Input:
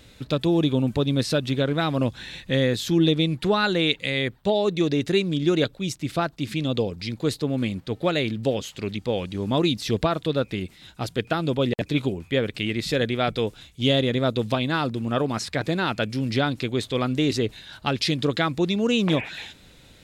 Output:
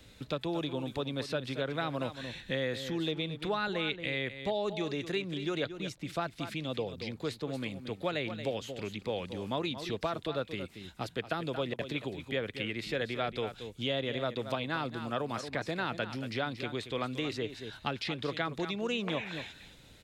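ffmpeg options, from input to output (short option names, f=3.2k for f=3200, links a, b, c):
-filter_complex "[0:a]aecho=1:1:228:0.237,acrossover=split=150|500|3200[a][b][c][d];[a]acompressor=threshold=-42dB:ratio=4[e];[b]acompressor=threshold=-35dB:ratio=4[f];[c]acompressor=threshold=-25dB:ratio=4[g];[d]acompressor=threshold=-44dB:ratio=4[h];[e][f][g][h]amix=inputs=4:normalize=0,volume=-5.5dB"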